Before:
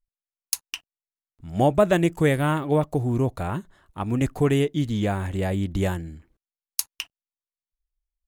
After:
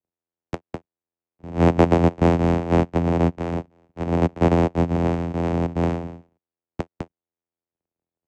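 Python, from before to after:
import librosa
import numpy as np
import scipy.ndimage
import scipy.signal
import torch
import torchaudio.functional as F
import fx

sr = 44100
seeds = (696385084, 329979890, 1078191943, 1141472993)

y = np.r_[np.sort(x[:len(x) // 128 * 128].reshape(-1, 128), axis=1).ravel(), x[len(x) // 128 * 128:]]
y = fx.vocoder(y, sr, bands=4, carrier='saw', carrier_hz=84.8)
y = F.gain(torch.from_numpy(y), 3.5).numpy()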